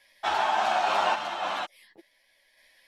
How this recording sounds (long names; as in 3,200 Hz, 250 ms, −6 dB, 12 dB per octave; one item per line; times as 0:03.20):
sample-and-hold tremolo 3.5 Hz, depth 55%
a shimmering, thickened sound